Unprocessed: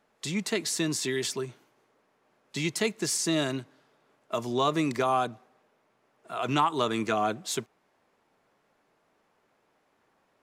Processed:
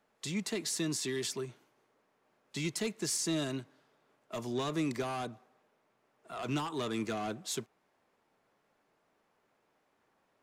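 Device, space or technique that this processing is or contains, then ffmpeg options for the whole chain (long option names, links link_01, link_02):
one-band saturation: -filter_complex "[0:a]acrossover=split=390|3900[link_01][link_02][link_03];[link_02]asoftclip=type=tanh:threshold=-32dB[link_04];[link_01][link_04][link_03]amix=inputs=3:normalize=0,volume=-4.5dB"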